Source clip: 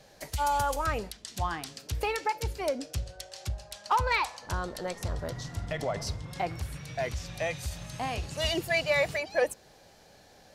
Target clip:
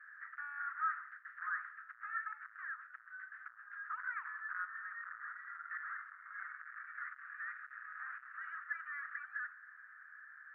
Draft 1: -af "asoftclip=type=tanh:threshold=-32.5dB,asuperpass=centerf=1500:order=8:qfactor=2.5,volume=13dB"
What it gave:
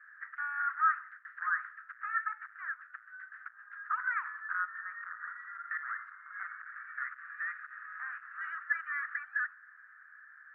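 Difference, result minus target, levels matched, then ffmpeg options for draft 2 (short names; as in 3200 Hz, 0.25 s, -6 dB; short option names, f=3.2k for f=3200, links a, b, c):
soft clip: distortion -5 dB
-af "asoftclip=type=tanh:threshold=-42.5dB,asuperpass=centerf=1500:order=8:qfactor=2.5,volume=13dB"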